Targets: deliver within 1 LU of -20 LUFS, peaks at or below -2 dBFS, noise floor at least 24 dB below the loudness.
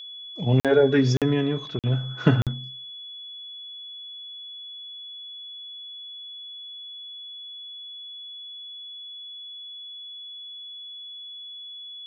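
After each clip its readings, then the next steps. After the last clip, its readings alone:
dropouts 4; longest dropout 47 ms; steady tone 3.4 kHz; tone level -37 dBFS; loudness -29.0 LUFS; peak level -6.0 dBFS; loudness target -20.0 LUFS
-> interpolate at 0.60/1.17/1.79/2.42 s, 47 ms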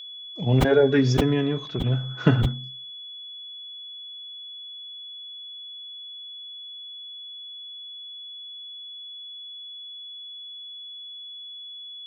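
dropouts 0; steady tone 3.4 kHz; tone level -37 dBFS
-> band-stop 3.4 kHz, Q 30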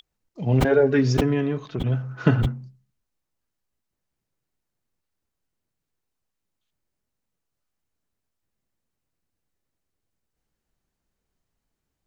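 steady tone not found; loudness -22.5 LUFS; peak level -6.0 dBFS; loudness target -20.0 LUFS
-> trim +2.5 dB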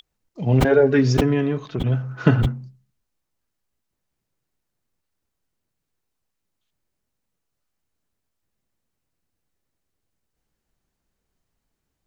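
loudness -20.0 LUFS; peak level -3.5 dBFS; noise floor -79 dBFS

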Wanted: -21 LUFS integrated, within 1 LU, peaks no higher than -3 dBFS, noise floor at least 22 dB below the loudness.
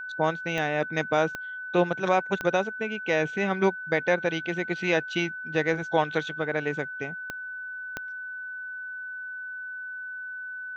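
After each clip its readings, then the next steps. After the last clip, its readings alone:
clicks found 5; steady tone 1.5 kHz; tone level -34 dBFS; loudness -28.5 LUFS; peak level -9.5 dBFS; loudness target -21.0 LUFS
-> de-click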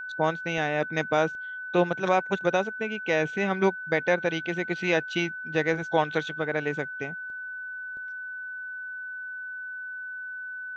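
clicks found 0; steady tone 1.5 kHz; tone level -34 dBFS
-> band-stop 1.5 kHz, Q 30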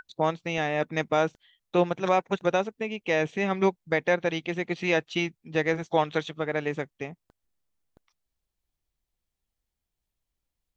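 steady tone not found; loudness -27.5 LUFS; peak level -10.0 dBFS; loudness target -21.0 LUFS
-> trim +6.5 dB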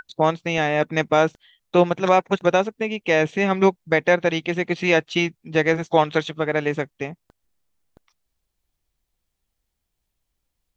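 loudness -21.0 LUFS; peak level -3.5 dBFS; noise floor -78 dBFS

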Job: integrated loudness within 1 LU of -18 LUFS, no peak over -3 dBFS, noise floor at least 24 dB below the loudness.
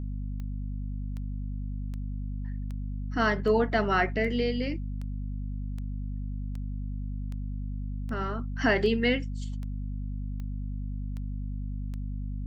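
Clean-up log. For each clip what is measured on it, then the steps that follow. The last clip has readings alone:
clicks found 16; hum 50 Hz; highest harmonic 250 Hz; hum level -31 dBFS; loudness -31.5 LUFS; peak level -11.0 dBFS; loudness target -18.0 LUFS
-> de-click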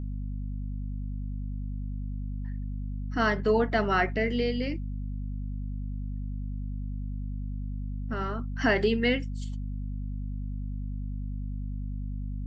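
clicks found 0; hum 50 Hz; highest harmonic 250 Hz; hum level -31 dBFS
-> hum notches 50/100/150/200/250 Hz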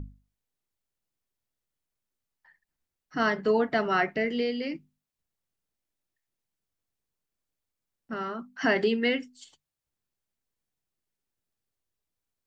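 hum not found; loudness -27.5 LUFS; peak level -11.5 dBFS; loudness target -18.0 LUFS
-> trim +9.5 dB; peak limiter -3 dBFS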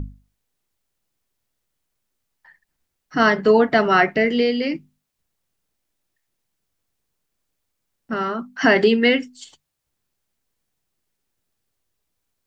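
loudness -18.5 LUFS; peak level -3.0 dBFS; noise floor -78 dBFS

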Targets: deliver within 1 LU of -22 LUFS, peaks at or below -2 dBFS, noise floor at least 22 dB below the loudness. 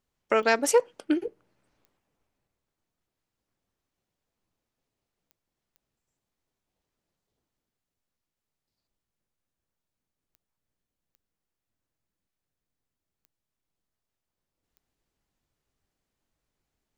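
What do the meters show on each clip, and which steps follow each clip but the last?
clicks found 8; loudness -25.5 LUFS; peak level -8.0 dBFS; loudness target -22.0 LUFS
-> de-click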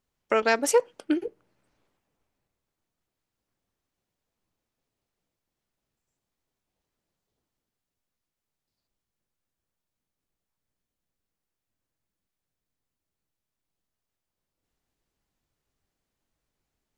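clicks found 0; loudness -25.5 LUFS; peak level -8.0 dBFS; loudness target -22.0 LUFS
-> trim +3.5 dB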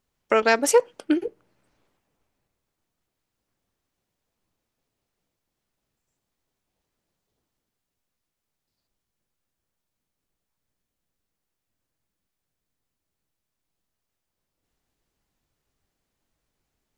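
loudness -22.0 LUFS; peak level -4.5 dBFS; noise floor -83 dBFS

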